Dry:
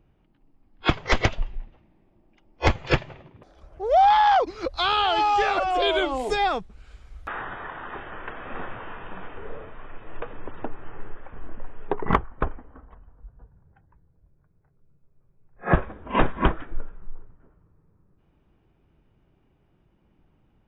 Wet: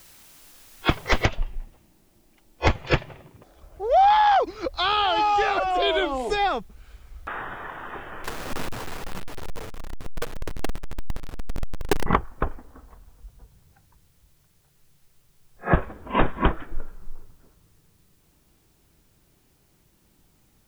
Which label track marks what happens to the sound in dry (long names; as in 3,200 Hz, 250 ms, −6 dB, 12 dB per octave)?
1.250000	1.250000	noise floor change −51 dB −67 dB
8.240000	12.060000	each half-wave held at its own peak